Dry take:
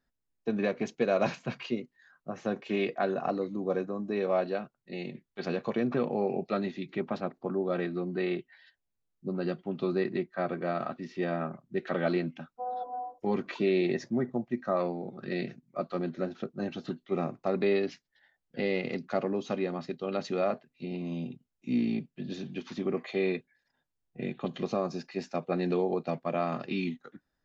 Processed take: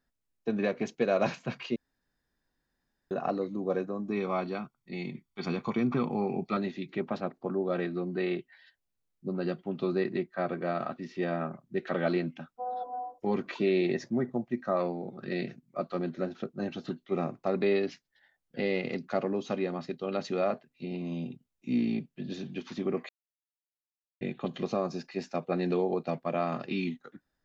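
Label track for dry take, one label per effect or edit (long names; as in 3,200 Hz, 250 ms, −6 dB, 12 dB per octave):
1.760000	3.110000	fill with room tone
4.080000	6.570000	comb filter 0.9 ms, depth 63%
23.090000	24.210000	silence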